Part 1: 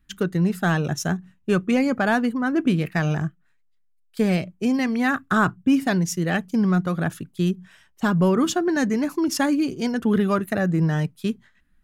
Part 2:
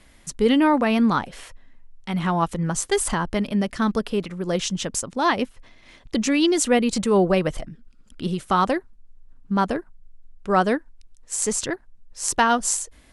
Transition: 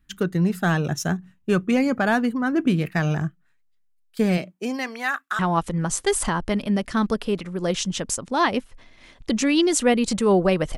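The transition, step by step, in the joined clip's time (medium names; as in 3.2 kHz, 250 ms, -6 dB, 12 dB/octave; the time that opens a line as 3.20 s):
part 1
4.37–5.39 s: high-pass 190 Hz -> 1.4 kHz
5.39 s: go over to part 2 from 2.24 s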